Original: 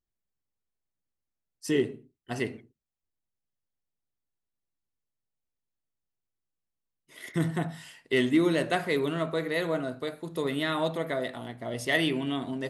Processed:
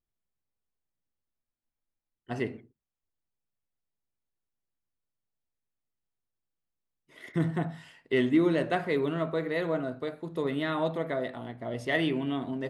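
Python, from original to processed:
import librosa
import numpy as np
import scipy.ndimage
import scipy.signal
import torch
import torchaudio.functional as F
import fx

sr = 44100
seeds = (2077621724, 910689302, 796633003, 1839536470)

y = fx.lowpass(x, sr, hz=1900.0, slope=6)
y = fx.spec_freeze(y, sr, seeds[0], at_s=1.42, hold_s=0.76)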